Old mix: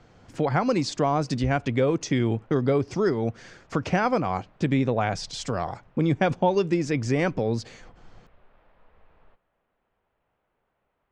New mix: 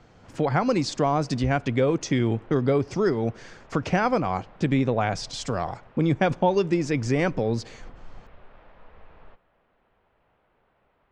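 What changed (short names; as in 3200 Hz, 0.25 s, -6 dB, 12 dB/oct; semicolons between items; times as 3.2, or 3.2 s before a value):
speech: send on; background +8.5 dB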